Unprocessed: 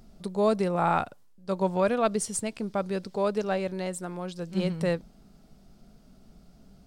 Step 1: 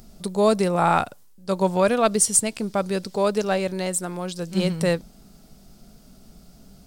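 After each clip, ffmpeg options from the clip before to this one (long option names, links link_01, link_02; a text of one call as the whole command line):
ffmpeg -i in.wav -af "highshelf=frequency=5000:gain=11.5,volume=5dB" out.wav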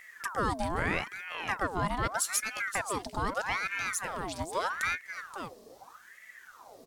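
ffmpeg -i in.wav -af "aecho=1:1:527:0.188,acompressor=threshold=-27dB:ratio=2,aeval=exprs='val(0)*sin(2*PI*1200*n/s+1200*0.65/0.8*sin(2*PI*0.8*n/s))':channel_layout=same,volume=-2dB" out.wav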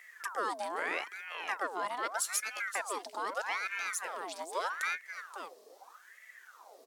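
ffmpeg -i in.wav -af "highpass=frequency=370:width=0.5412,highpass=frequency=370:width=1.3066,volume=-3dB" out.wav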